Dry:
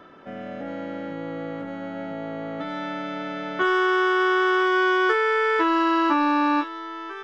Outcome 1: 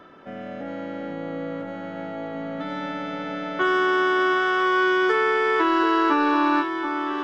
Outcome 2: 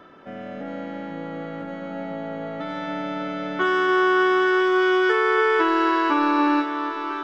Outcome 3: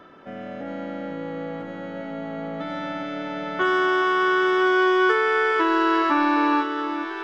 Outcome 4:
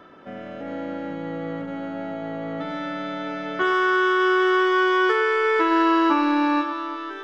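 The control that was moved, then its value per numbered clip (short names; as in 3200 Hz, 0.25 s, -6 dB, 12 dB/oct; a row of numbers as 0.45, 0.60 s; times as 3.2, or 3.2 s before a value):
echo with dull and thin repeats by turns, time: 0.733, 0.286, 0.423, 0.115 s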